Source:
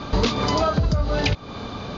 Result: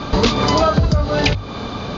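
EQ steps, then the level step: hum notches 50/100 Hz; +6.0 dB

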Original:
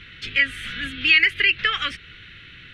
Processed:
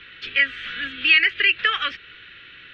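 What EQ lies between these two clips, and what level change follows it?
distance through air 130 m; three-band isolator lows -15 dB, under 330 Hz, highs -16 dB, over 6 kHz; band-stop 2.1 kHz, Q 13; +3.0 dB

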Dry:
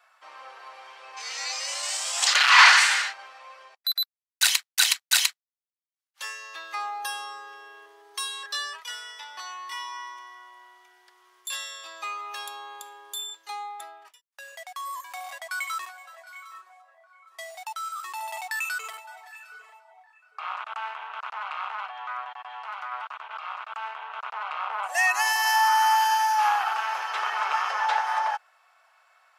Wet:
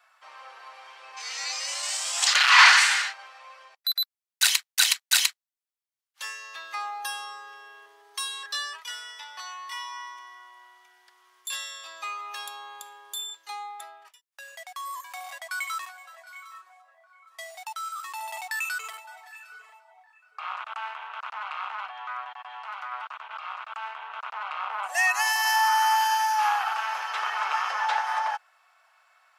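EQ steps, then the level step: high-pass 300 Hz 12 dB/octave; bass shelf 470 Hz -7 dB; 0.0 dB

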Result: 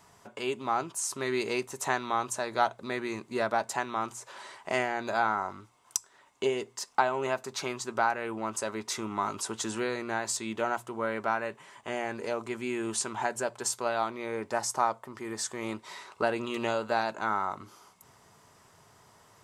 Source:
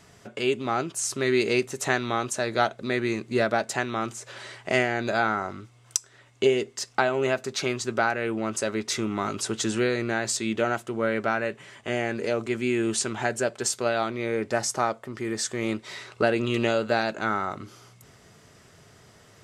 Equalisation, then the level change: peaking EQ 960 Hz +13.5 dB 0.66 oct; treble shelf 8.5 kHz +11 dB; hum notches 60/120 Hz; -8.5 dB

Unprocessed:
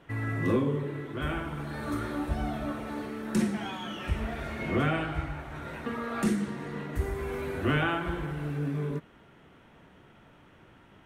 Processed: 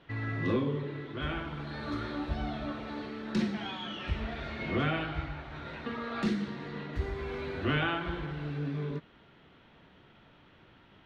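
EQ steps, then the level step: distance through air 230 m; treble shelf 3.1 kHz +9.5 dB; peaking EQ 4.1 kHz +8.5 dB 0.77 oct; -3.0 dB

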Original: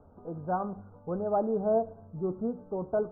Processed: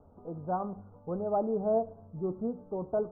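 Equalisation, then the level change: low-pass 1.3 kHz 24 dB/octave; -1.5 dB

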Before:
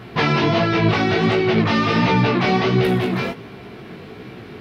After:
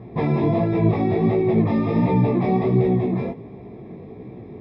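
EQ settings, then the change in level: boxcar filter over 30 samples; 0.0 dB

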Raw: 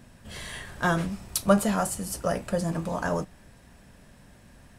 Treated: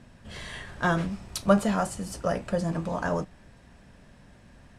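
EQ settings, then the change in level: distance through air 58 m; 0.0 dB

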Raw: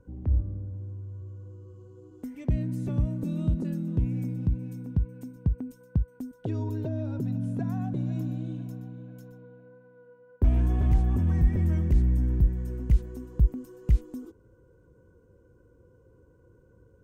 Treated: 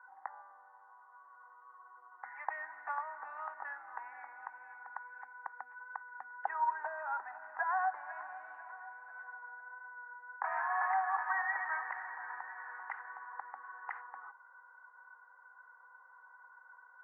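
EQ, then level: Chebyshev band-pass 790–1900 Hz, order 4; +17.5 dB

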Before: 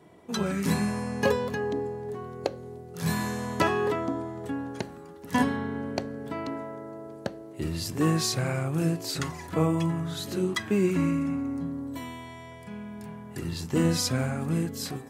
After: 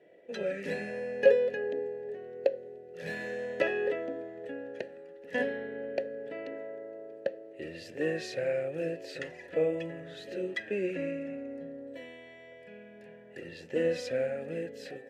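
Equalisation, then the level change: vowel filter e; +8.0 dB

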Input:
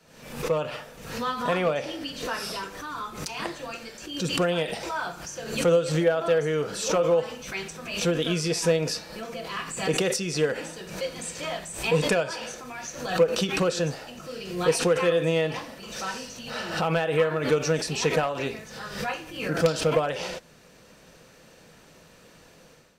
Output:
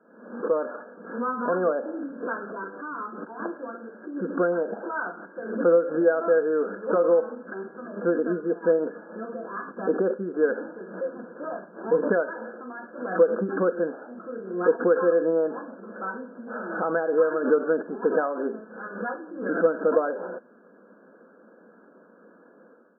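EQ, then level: brick-wall FIR band-pass 190–1700 Hz; peaking EQ 840 Hz -8 dB 1 oct; +4.5 dB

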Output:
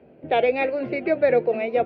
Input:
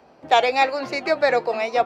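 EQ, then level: cabinet simulation 120–2600 Hz, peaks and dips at 120 Hz -5 dB, 190 Hz -6 dB, 280 Hz -5 dB, 810 Hz -5 dB, 1.2 kHz -7 dB, 1.8 kHz -5 dB; tilt EQ -2.5 dB/octave; peaking EQ 1 kHz -14 dB 1.2 oct; +5.0 dB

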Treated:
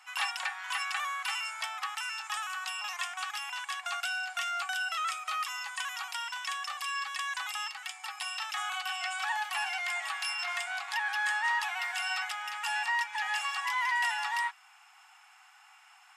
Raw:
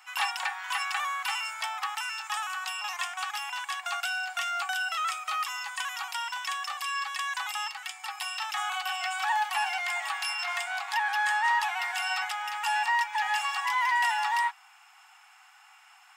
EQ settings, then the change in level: dynamic bell 860 Hz, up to -6 dB, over -44 dBFS, Q 3.1; brick-wall FIR low-pass 13 kHz; -2.0 dB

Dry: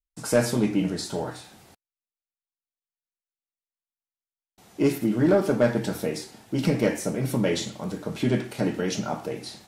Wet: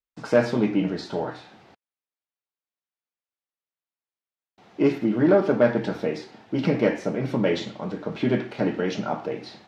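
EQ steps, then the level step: high-pass 230 Hz 6 dB/octave; distance through air 230 m; +4.0 dB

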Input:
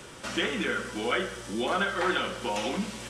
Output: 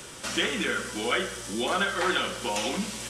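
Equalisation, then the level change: treble shelf 3.9 kHz +9.5 dB; 0.0 dB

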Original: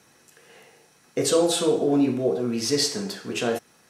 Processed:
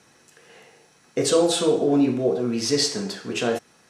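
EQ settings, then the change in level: low-pass 9.5 kHz 12 dB/octave; +1.5 dB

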